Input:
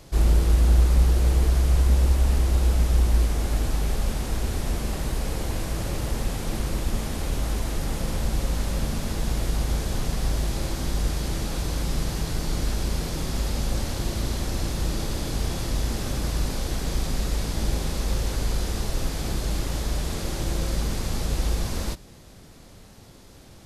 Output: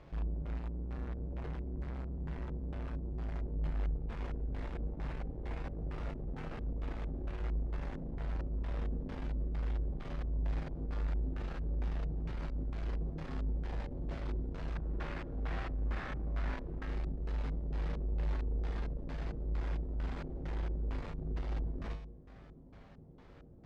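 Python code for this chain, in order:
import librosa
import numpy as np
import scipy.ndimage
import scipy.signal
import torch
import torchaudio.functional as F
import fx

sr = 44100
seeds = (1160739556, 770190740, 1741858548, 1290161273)

y = fx.peak_eq(x, sr, hz=1600.0, db=10.0, octaves=1.9, at=(14.75, 16.83))
y = fx.tube_stage(y, sr, drive_db=34.0, bias=0.6)
y = fx.comb_fb(y, sr, f0_hz=52.0, decay_s=0.81, harmonics='odd', damping=0.0, mix_pct=80)
y = fx.filter_lfo_lowpass(y, sr, shape='square', hz=2.2, low_hz=400.0, high_hz=2000.0, q=1.0)
y = y * librosa.db_to_amplitude(7.0)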